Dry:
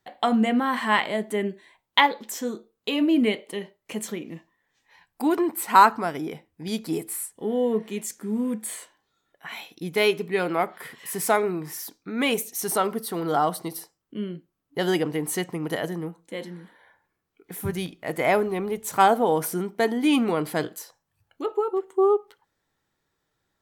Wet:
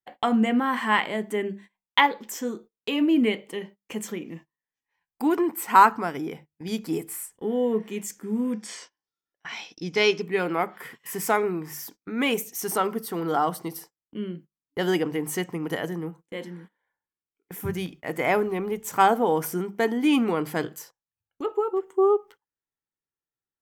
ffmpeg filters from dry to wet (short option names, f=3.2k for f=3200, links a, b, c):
-filter_complex "[0:a]asettb=1/sr,asplit=3[a][b][c];[a]atrim=end=8.534[d];[b]atrim=start=8.53:end=10.22,asetpts=PTS-STARTPTS,afade=t=in:d=0.004:c=qsin,afade=t=out:st=1.686:d=0.004:c=qsin,lowpass=f=5.3k:t=q:w=6.1[e];[c]atrim=start=10.216[f];[d][e]acrossfade=d=0.004:c1=hsin:c2=qsin[g];[g][f]acrossfade=d=0.004:c1=qsin:c2=hsin,bandreject=f=50:t=h:w=6,bandreject=f=100:t=h:w=6,bandreject=f=150:t=h:w=6,bandreject=f=200:t=h:w=6,agate=range=-22dB:threshold=-44dB:ratio=16:detection=peak,equalizer=f=630:t=o:w=0.33:g=-5,equalizer=f=4k:t=o:w=0.33:g=-8,equalizer=f=10k:t=o:w=0.33:g=-7"